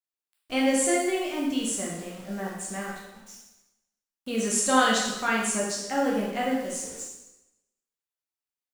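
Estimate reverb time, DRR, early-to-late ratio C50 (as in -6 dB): 0.95 s, -4.0 dB, 1.5 dB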